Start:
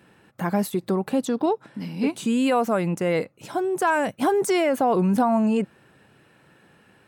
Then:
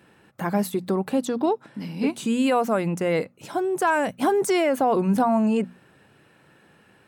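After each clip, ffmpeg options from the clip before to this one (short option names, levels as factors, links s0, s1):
-af "bandreject=f=60:t=h:w=6,bandreject=f=120:t=h:w=6,bandreject=f=180:t=h:w=6,bandreject=f=240:t=h:w=6"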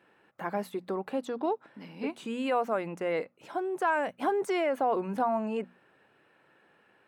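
-af "bass=f=250:g=-13,treble=f=4000:g=-12,volume=0.531"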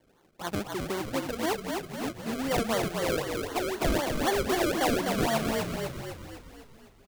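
-filter_complex "[0:a]acrusher=samples=33:mix=1:aa=0.000001:lfo=1:lforange=33:lforate=3.9,asplit=9[s0][s1][s2][s3][s4][s5][s6][s7][s8];[s1]adelay=252,afreqshift=-43,volume=0.631[s9];[s2]adelay=504,afreqshift=-86,volume=0.355[s10];[s3]adelay=756,afreqshift=-129,volume=0.197[s11];[s4]adelay=1008,afreqshift=-172,volume=0.111[s12];[s5]adelay=1260,afreqshift=-215,volume=0.0624[s13];[s6]adelay=1512,afreqshift=-258,volume=0.0347[s14];[s7]adelay=1764,afreqshift=-301,volume=0.0195[s15];[s8]adelay=2016,afreqshift=-344,volume=0.0108[s16];[s0][s9][s10][s11][s12][s13][s14][s15][s16]amix=inputs=9:normalize=0"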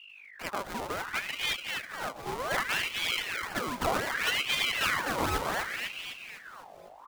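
-af "aeval=exprs='val(0)+0.00447*(sin(2*PI*50*n/s)+sin(2*PI*2*50*n/s)/2+sin(2*PI*3*50*n/s)/3+sin(2*PI*4*50*n/s)/4+sin(2*PI*5*50*n/s)/5)':c=same,aeval=exprs='val(0)*sin(2*PI*1700*n/s+1700*0.65/0.66*sin(2*PI*0.66*n/s))':c=same"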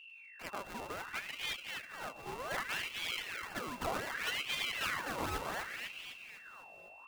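-af "aeval=exprs='val(0)+0.00501*sin(2*PI*2700*n/s)':c=same,volume=0.398"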